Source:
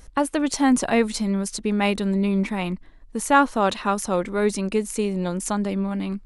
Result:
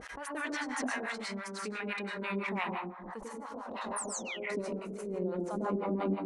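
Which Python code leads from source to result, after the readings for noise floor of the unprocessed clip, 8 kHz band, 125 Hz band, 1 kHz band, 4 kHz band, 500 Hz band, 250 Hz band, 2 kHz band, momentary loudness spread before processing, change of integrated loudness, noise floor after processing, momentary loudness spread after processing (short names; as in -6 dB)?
-47 dBFS, -12.0 dB, -14.5 dB, -14.0 dB, -12.0 dB, -12.5 dB, -15.5 dB, -8.0 dB, 8 LU, -13.5 dB, -45 dBFS, 9 LU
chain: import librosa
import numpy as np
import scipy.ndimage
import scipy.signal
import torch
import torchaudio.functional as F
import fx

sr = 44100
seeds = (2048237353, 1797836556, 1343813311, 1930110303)

y = fx.spec_paint(x, sr, seeds[0], shape='fall', start_s=3.96, length_s=0.41, low_hz=1800.0, high_hz=10000.0, level_db=-12.0)
y = fx.filter_sweep_bandpass(y, sr, from_hz=1700.0, to_hz=410.0, start_s=1.83, end_s=5.28, q=1.5)
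y = fx.over_compress(y, sr, threshold_db=-34.0, ratio=-1.0)
y = fx.rev_plate(y, sr, seeds[1], rt60_s=0.79, hf_ratio=0.35, predelay_ms=85, drr_db=-1.5)
y = fx.harmonic_tremolo(y, sr, hz=5.9, depth_pct=100, crossover_hz=660.0)
y = fx.pre_swell(y, sr, db_per_s=38.0)
y = F.gain(torch.from_numpy(y), -2.5).numpy()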